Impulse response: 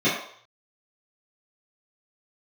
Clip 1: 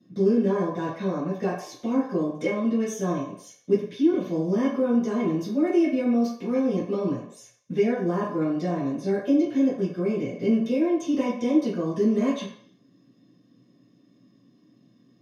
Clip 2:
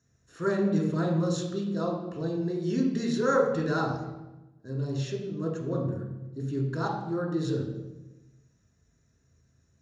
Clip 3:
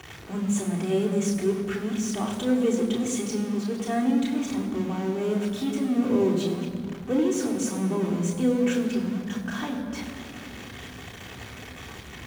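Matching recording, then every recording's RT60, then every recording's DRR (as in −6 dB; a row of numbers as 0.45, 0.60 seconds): 1; 0.60, 1.1, 2.4 seconds; −13.0, −0.5, −2.5 decibels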